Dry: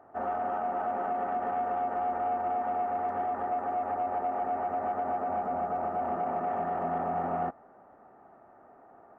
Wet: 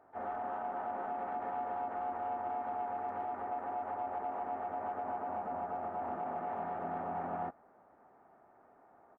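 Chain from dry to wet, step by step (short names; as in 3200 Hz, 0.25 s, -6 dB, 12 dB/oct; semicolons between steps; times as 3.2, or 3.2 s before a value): harmoniser +3 st -8 dB, +5 st -17 dB; gain -8 dB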